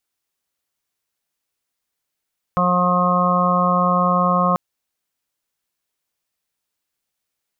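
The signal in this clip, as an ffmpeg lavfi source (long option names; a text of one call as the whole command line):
ffmpeg -f lavfi -i "aevalsrc='0.106*sin(2*PI*179*t)+0.0126*sin(2*PI*358*t)+0.075*sin(2*PI*537*t)+0.0631*sin(2*PI*716*t)+0.015*sin(2*PI*895*t)+0.126*sin(2*PI*1074*t)+0.0794*sin(2*PI*1253*t)':duration=1.99:sample_rate=44100" out.wav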